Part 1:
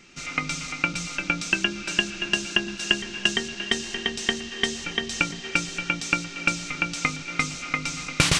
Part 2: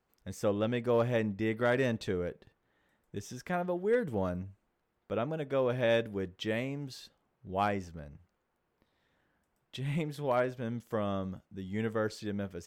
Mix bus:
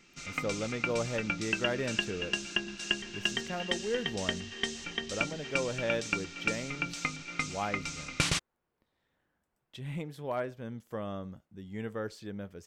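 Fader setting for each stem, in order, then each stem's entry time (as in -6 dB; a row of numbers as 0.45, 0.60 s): -8.5, -4.5 dB; 0.00, 0.00 s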